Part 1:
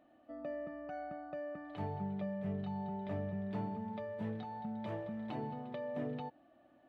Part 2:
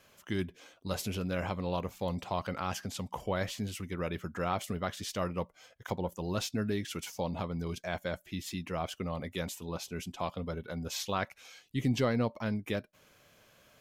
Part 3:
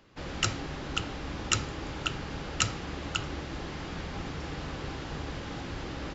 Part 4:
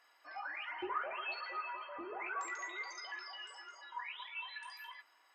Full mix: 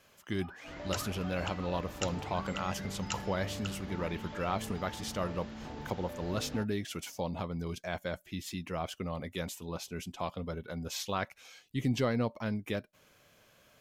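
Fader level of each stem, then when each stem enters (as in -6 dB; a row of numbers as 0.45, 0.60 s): -4.5, -1.0, -10.5, -8.5 dB; 0.35, 0.00, 0.50, 0.05 s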